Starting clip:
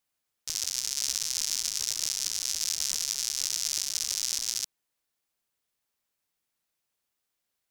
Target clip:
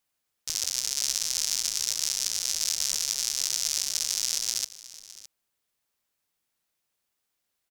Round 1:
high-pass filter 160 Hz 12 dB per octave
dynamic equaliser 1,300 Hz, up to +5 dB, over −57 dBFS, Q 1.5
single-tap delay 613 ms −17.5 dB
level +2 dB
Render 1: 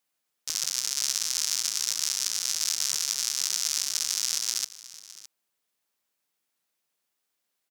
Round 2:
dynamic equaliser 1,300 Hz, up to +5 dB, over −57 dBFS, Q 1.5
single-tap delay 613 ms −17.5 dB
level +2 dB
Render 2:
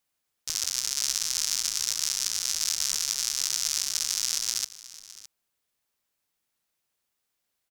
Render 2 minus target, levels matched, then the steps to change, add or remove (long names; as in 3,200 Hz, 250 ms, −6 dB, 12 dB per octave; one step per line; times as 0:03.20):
500 Hz band −3.5 dB
change: dynamic equaliser 550 Hz, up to +5 dB, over −57 dBFS, Q 1.5